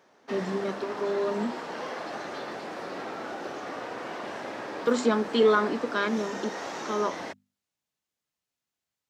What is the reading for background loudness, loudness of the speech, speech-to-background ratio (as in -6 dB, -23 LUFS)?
-36.5 LUFS, -28.0 LUFS, 8.5 dB